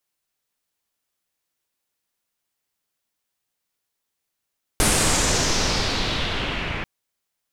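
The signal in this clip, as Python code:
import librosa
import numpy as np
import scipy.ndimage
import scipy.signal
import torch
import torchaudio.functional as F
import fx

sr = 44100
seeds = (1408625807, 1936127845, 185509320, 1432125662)

y = fx.riser_noise(sr, seeds[0], length_s=2.04, colour='pink', kind='lowpass', start_hz=10000.0, end_hz=2300.0, q=2.5, swell_db=-10.0, law='exponential')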